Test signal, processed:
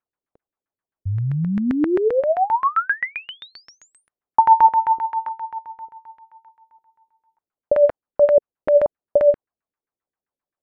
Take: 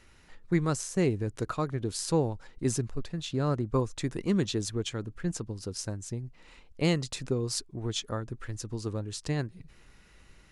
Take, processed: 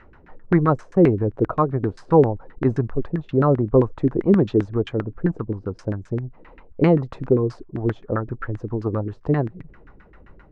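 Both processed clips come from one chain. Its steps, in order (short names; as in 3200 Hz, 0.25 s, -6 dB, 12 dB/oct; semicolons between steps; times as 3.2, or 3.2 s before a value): LFO low-pass saw down 7.6 Hz 290–1800 Hz; gain +8.5 dB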